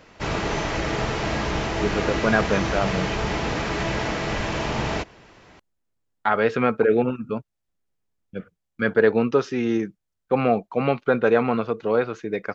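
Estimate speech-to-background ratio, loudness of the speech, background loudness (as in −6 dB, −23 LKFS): 3.0 dB, −23.0 LKFS, −26.0 LKFS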